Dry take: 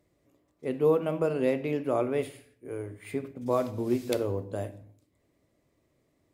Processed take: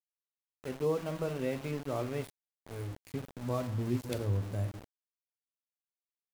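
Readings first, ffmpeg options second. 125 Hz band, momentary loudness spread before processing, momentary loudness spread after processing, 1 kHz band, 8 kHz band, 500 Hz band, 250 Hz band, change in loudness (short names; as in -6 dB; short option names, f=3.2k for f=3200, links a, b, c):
+2.5 dB, 13 LU, 11 LU, -7.0 dB, -2.0 dB, -8.5 dB, -6.0 dB, -6.0 dB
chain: -af "bandreject=f=331:t=h:w=4,bandreject=f=662:t=h:w=4,bandreject=f=993:t=h:w=4,bandreject=f=1.324k:t=h:w=4,bandreject=f=1.655k:t=h:w=4,bandreject=f=1.986k:t=h:w=4,bandreject=f=2.317k:t=h:w=4,asubboost=boost=6.5:cutoff=160,aeval=exprs='val(0)*gte(abs(val(0)),0.0188)':c=same,volume=-6.5dB"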